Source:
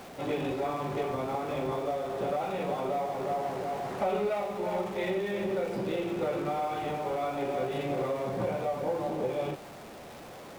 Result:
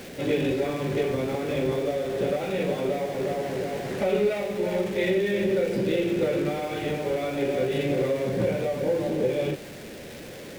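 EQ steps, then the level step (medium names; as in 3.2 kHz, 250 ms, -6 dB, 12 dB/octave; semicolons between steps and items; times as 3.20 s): high-order bell 940 Hz -11.5 dB 1.2 oct; +7.5 dB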